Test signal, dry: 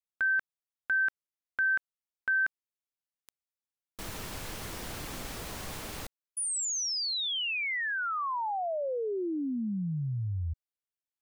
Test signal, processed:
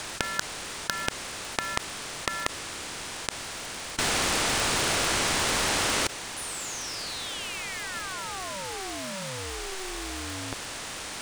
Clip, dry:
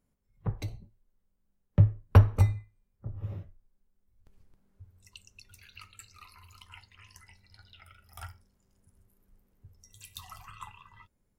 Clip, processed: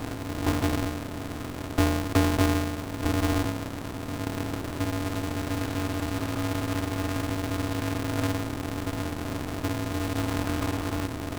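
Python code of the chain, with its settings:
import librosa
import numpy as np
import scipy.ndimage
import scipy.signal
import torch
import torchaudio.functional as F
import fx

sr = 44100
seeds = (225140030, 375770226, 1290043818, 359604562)

y = fx.bin_compress(x, sr, power=0.2)
y = y * np.sign(np.sin(2.0 * np.pi * 190.0 * np.arange(len(y)) / sr))
y = y * librosa.db_to_amplitude(-8.0)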